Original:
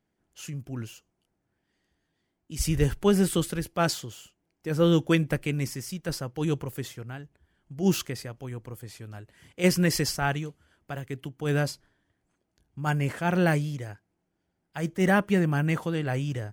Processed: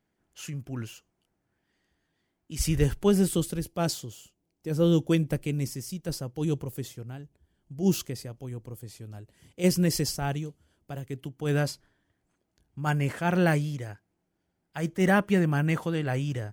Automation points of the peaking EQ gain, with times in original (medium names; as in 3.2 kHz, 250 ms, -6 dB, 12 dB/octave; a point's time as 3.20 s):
peaking EQ 1.6 kHz 1.9 oct
2.54 s +2 dB
3.46 s -9.5 dB
10.93 s -9.5 dB
11.71 s -0.5 dB